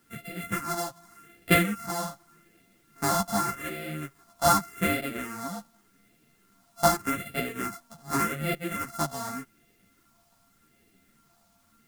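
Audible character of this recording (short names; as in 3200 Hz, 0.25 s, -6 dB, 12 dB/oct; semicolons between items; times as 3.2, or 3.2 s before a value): a buzz of ramps at a fixed pitch in blocks of 64 samples; phasing stages 4, 0.85 Hz, lowest notch 400–1000 Hz; a quantiser's noise floor 12-bit, dither triangular; a shimmering, thickened sound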